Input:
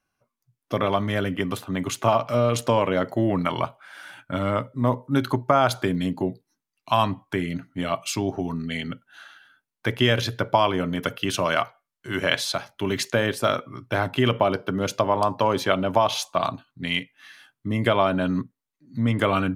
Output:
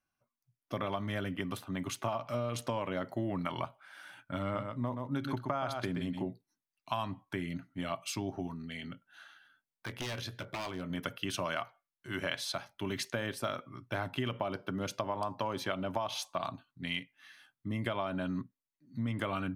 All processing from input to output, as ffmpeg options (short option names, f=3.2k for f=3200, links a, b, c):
-filter_complex "[0:a]asettb=1/sr,asplit=3[a][b][c];[a]atrim=end=4.424[d];[b]atrim=start=4.42:end=6.29,asetpts=PTS-STARTPTS,afade=t=in:d=0.004:c=qsin,afade=t=out:st=1.866:d=0.004:c=qsin,highshelf=f=8k:g=-7,aecho=1:1:126:0.447,atrim=end_sample=82467[e];[c]atrim=start=6.286[f];[d][e]acrossfade=d=0.004:c1=hsin:c2=qsin[g];[g][f]acrossfade=d=0.004:c1=qsin:c2=hsin,asettb=1/sr,asplit=3[h][i][j];[h]atrim=end=8.474[k];[i]atrim=start=8.47:end=10.9,asetpts=PTS-STARTPTS,afade=t=in:d=0.004:c=qsin,afade=t=out:st=2.426:d=0.004:c=qsin,aeval=exprs='0.158*(abs(mod(val(0)/0.158+3,4)-2)-1)':c=same,acompressor=threshold=-30dB:ratio=2:attack=3.2:release=140:knee=1:detection=peak,asplit=2[l][m];[m]adelay=22,volume=-14dB[n];[l][n]amix=inputs=2:normalize=0,atrim=end_sample=107163[o];[j]atrim=start=10.896[p];[k][o]acrossfade=d=0.004:c1=hsin:c2=qsin[q];[q][p]acrossfade=d=0.004:c1=qsin:c2=hsin,equalizer=f=450:w=4.4:g=-6,bandreject=f=7k:w=14,acompressor=threshold=-21dB:ratio=6,volume=-9dB"